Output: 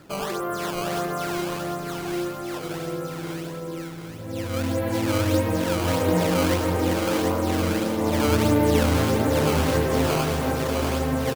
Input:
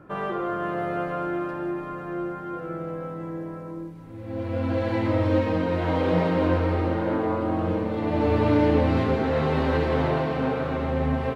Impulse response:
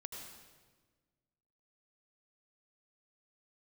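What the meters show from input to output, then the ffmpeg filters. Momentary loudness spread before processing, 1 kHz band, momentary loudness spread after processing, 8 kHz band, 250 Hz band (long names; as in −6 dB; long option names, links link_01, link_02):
12 LU, +1.0 dB, 11 LU, can't be measured, +1.0 dB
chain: -filter_complex "[0:a]acrusher=samples=14:mix=1:aa=0.000001:lfo=1:lforange=22.4:lforate=1.6,aecho=1:1:744|1488|2232|2976:0.501|0.175|0.0614|0.0215,asplit=2[link_01][link_02];[1:a]atrim=start_sample=2205,adelay=73[link_03];[link_02][link_03]afir=irnorm=-1:irlink=0,volume=-14dB[link_04];[link_01][link_04]amix=inputs=2:normalize=0"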